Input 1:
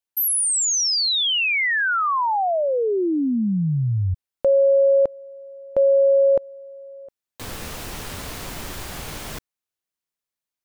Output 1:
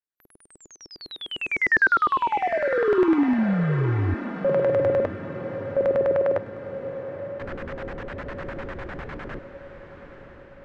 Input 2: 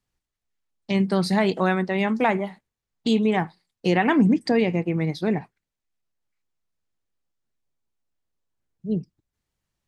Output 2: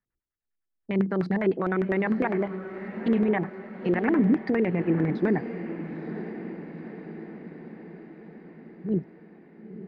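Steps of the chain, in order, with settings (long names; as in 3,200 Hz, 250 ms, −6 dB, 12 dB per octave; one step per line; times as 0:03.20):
brickwall limiter −15 dBFS
noise reduction from a noise print of the clip's start 7 dB
auto-filter low-pass square 9.9 Hz 370–1,700 Hz
on a send: feedback delay with all-pass diffusion 931 ms, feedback 60%, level −11.5 dB
on the sum: level −2.5 dB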